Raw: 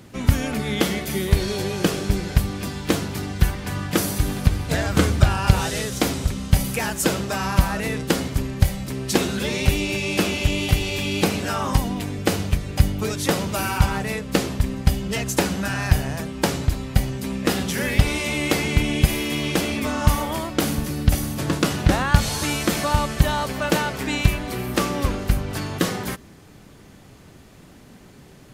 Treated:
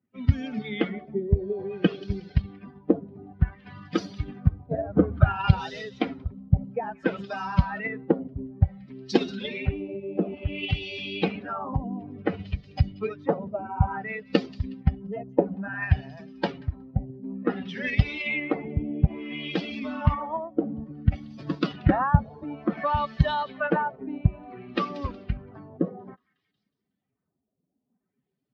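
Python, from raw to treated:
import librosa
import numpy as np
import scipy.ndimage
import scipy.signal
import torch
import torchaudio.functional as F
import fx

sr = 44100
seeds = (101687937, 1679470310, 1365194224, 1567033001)

p1 = fx.bin_expand(x, sr, power=2.0)
p2 = scipy.signal.sosfilt(scipy.signal.butter(2, 75.0, 'highpass', fs=sr, output='sos'), p1)
p3 = p2 + fx.echo_wet_highpass(p2, sr, ms=183, feedback_pct=33, hz=4100.0, wet_db=-11.5, dry=0)
p4 = fx.filter_lfo_lowpass(p3, sr, shape='sine', hz=0.57, low_hz=560.0, high_hz=5300.0, q=1.6)
p5 = fx.level_steps(p4, sr, step_db=10)
p6 = p4 + (p5 * librosa.db_to_amplitude(-1.0))
p7 = fx.air_absorb(p6, sr, metres=260.0)
p8 = fx.band_squash(p7, sr, depth_pct=40, at=(11.73, 12.92))
y = p8 * librosa.db_to_amplitude(-1.5)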